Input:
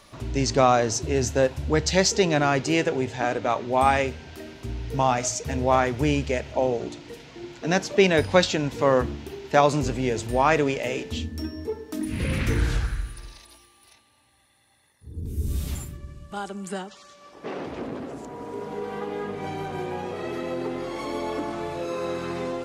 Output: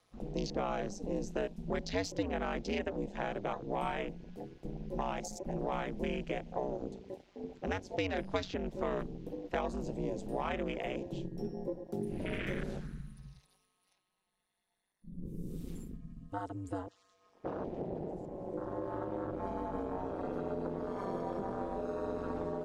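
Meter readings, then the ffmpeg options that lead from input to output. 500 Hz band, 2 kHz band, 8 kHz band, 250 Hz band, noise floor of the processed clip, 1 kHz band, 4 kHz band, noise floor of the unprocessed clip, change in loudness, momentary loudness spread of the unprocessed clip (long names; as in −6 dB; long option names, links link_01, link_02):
−12.5 dB, −15.0 dB, −21.5 dB, −10.5 dB, −78 dBFS, −14.5 dB, −16.5 dB, −58 dBFS, −13.5 dB, 16 LU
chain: -filter_complex "[0:a]afwtdn=0.0251,equalizer=frequency=650:width=1.5:gain=2.5,acrossover=split=94|250|2800[link_01][link_02][link_03][link_04];[link_01]acompressor=threshold=-43dB:ratio=4[link_05];[link_02]acompressor=threshold=-39dB:ratio=4[link_06];[link_03]acompressor=threshold=-32dB:ratio=4[link_07];[link_04]acompressor=threshold=-43dB:ratio=4[link_08];[link_05][link_06][link_07][link_08]amix=inputs=4:normalize=0,aeval=exprs='val(0)*sin(2*PI*95*n/s)':channel_layout=same,volume=-1.5dB"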